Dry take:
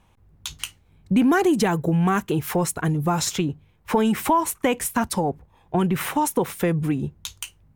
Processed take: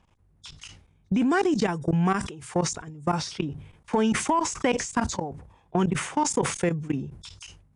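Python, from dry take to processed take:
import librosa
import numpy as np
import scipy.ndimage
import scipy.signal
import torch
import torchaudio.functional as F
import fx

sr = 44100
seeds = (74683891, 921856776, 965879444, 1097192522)

y = fx.freq_compress(x, sr, knee_hz=3300.0, ratio=1.5)
y = fx.hum_notches(y, sr, base_hz=60, count=2)
y = fx.level_steps(y, sr, step_db=20)
y = fx.cheby_harmonics(y, sr, harmonics=(3,), levels_db=(-23,), full_scale_db=-11.0)
y = fx.sustainer(y, sr, db_per_s=85.0)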